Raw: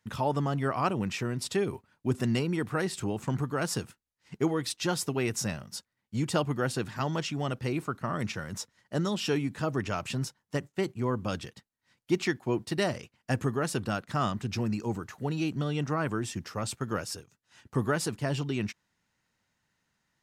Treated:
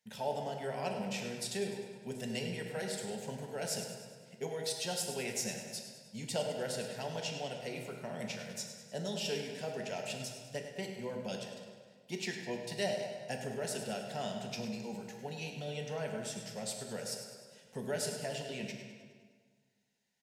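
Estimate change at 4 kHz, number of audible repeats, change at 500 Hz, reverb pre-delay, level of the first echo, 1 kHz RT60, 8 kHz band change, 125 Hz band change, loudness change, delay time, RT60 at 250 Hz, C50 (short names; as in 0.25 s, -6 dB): -3.0 dB, 3, -5.5 dB, 4 ms, -10.5 dB, 1.7 s, -2.0 dB, -13.5 dB, -7.5 dB, 0.102 s, 1.9 s, 3.5 dB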